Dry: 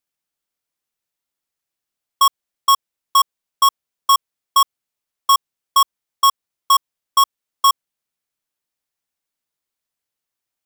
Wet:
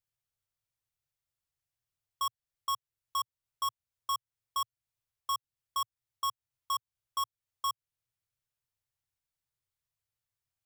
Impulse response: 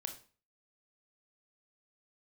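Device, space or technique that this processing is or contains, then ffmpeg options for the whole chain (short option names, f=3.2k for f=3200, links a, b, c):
car stereo with a boomy subwoofer: -af "lowshelf=f=160:t=q:w=3:g=11,alimiter=limit=-20.5dB:level=0:latency=1:release=285,volume=-8dB"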